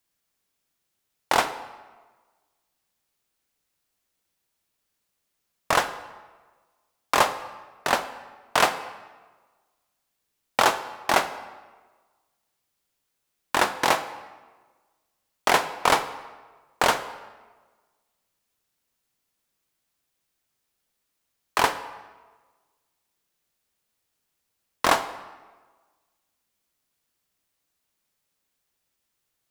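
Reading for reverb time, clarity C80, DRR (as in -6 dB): 1.4 s, 14.0 dB, 11.0 dB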